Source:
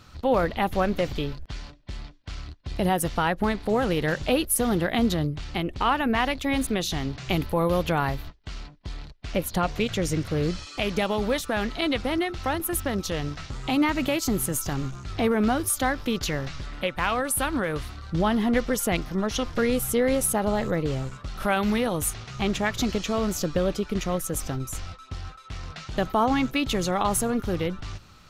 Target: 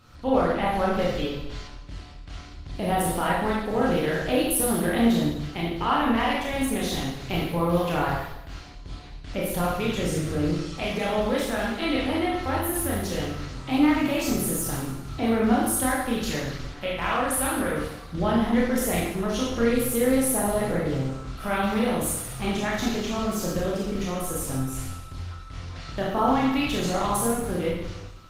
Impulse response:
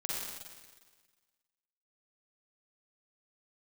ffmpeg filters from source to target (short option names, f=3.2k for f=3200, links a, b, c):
-filter_complex "[1:a]atrim=start_sample=2205,asetrate=74970,aresample=44100[a];[0:a][a]afir=irnorm=-1:irlink=0,volume=2dB" -ar 48000 -c:a libopus -b:a 24k